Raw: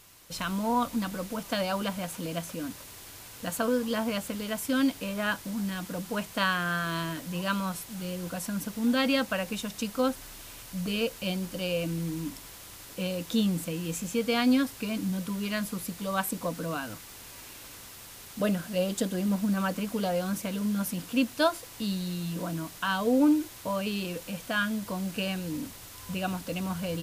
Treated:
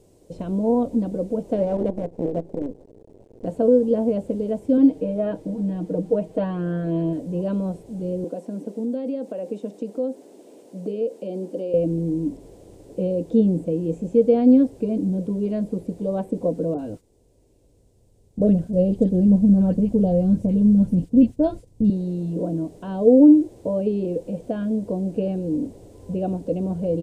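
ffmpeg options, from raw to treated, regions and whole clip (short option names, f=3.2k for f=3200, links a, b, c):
-filter_complex "[0:a]asettb=1/sr,asplit=3[a][b][c];[a]atrim=end=1.534[d];[b]atrim=start=1.53:end=3.46,asetpts=PTS-STARTPTS,afade=t=in:d=0.004:c=qsin,afade=t=out:st=1.926:d=0.004:c=qsin,equalizer=f=2k:t=o:w=0.26:g=5.5,adynamicsmooth=sensitivity=6:basefreq=510,acrusher=bits=6:dc=4:mix=0:aa=0.000001[e];[c]atrim=start=3.456[f];[d][e]acrossfade=d=0.004:c1=hsin:c2=qsin[g];[g][f]acrossfade=d=0.004:c1=qsin:c2=hsin,asettb=1/sr,asplit=3[h][i][j];[h]atrim=end=4.774[k];[i]atrim=start=4.77:end=7.13,asetpts=PTS-STARTPTS,afade=t=in:d=0.004:c=qsin,afade=t=out:st=2.356:d=0.004:c=qsin,bass=f=250:g=-2,treble=f=4k:g=-10,aecho=1:1:6.4:0.73,atrim=end_sample=104076[l];[j]atrim=start=7.126[m];[k][l]acrossfade=d=0.004:c1=hsin:c2=qsin[n];[n][m]acrossfade=d=0.004:c1=qsin:c2=hsin,asettb=1/sr,asplit=3[o][p][q];[o]atrim=end=8.244[r];[p]atrim=start=8.24:end=11.74,asetpts=PTS-STARTPTS,afade=t=in:d=0.004:c=qsin,afade=t=out:st=3.496:d=0.004:c=qsin,highpass=f=230:w=0.5412,highpass=f=230:w=1.3066,acompressor=threshold=-32dB:ratio=5:attack=3.2:release=140:knee=1:detection=peak[s];[q]atrim=start=11.736[t];[r][s]acrossfade=d=0.004:c1=hsin:c2=qsin[u];[u][t]acrossfade=d=0.004:c1=qsin:c2=hsin,asettb=1/sr,asplit=3[v][w][x];[v]atrim=end=16.744[y];[w]atrim=start=16.74:end=21.9,asetpts=PTS-STARTPTS,afade=t=in:d=0.004:c=qsin,afade=t=out:st=5.156:d=0.004:c=qsin,agate=range=-16dB:threshold=-42dB:ratio=16:release=100:detection=peak,asubboost=boost=9:cutoff=140,acrossover=split=1300[z][aa];[aa]adelay=40[ab];[z][ab]amix=inputs=2:normalize=0,atrim=end_sample=227556[ac];[x]atrim=start=21.896[ad];[y][ac]acrossfade=d=0.004:c1=hsin:c2=qsin[ae];[ae][ad]acrossfade=d=0.004:c1=qsin:c2=hsin,acrossover=split=3300[af][ag];[ag]acompressor=threshold=-49dB:ratio=4:attack=1:release=60[ah];[af][ah]amix=inputs=2:normalize=0,firequalizer=gain_entry='entry(140,0);entry(430,10);entry(1200,-24);entry(8400,-12);entry(12000,-24)':delay=0.05:min_phase=1,volume=5.5dB"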